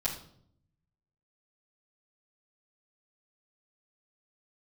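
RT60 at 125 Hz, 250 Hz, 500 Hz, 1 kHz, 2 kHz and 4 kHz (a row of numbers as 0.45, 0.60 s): 1.3, 1.0, 0.75, 0.55, 0.45, 0.50 s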